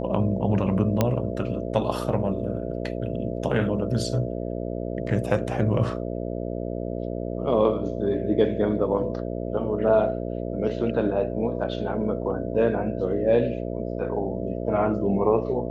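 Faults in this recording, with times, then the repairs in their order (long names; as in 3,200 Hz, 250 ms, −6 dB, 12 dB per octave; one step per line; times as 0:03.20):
mains buzz 60 Hz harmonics 11 −30 dBFS
0:01.01: click −7 dBFS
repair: click removal
hum removal 60 Hz, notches 11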